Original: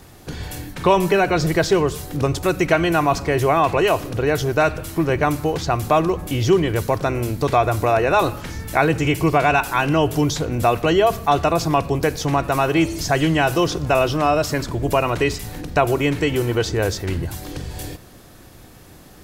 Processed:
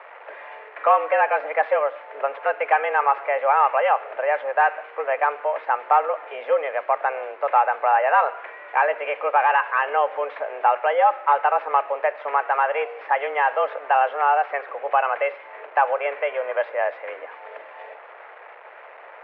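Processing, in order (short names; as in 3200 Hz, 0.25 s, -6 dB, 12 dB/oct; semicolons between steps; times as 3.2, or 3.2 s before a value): delta modulation 64 kbps, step -30.5 dBFS; mistuned SSB +140 Hz 410–2200 Hz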